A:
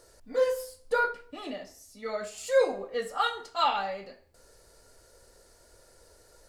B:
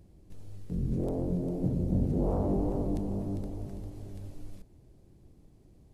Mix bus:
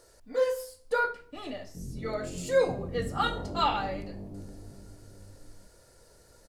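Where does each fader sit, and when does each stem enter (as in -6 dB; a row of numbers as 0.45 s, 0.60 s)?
-1.0 dB, -8.5 dB; 0.00 s, 1.05 s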